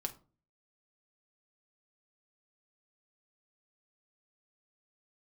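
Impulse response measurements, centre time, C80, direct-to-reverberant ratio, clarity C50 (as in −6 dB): 7 ms, 21.5 dB, 4.5 dB, 16.0 dB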